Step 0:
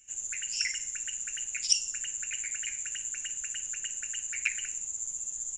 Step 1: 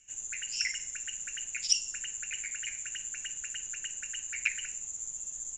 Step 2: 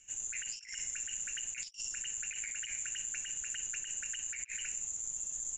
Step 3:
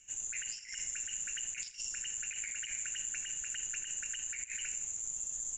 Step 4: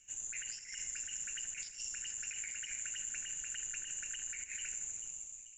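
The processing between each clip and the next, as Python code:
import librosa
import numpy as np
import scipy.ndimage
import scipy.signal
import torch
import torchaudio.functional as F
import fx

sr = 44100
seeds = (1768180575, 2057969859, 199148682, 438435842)

y1 = scipy.signal.sosfilt(scipy.signal.butter(2, 7000.0, 'lowpass', fs=sr, output='sos'), x)
y2 = fx.over_compress(y1, sr, threshold_db=-39.0, ratio=-0.5)
y2 = y2 * 10.0 ** (-1.0 / 20.0)
y3 = fx.echo_feedback(y2, sr, ms=82, feedback_pct=59, wet_db=-15)
y4 = fx.fade_out_tail(y3, sr, length_s=0.7)
y4 = fx.echo_split(y4, sr, split_hz=2900.0, low_ms=82, high_ms=437, feedback_pct=52, wet_db=-11.5)
y4 = y4 * 10.0 ** (-3.0 / 20.0)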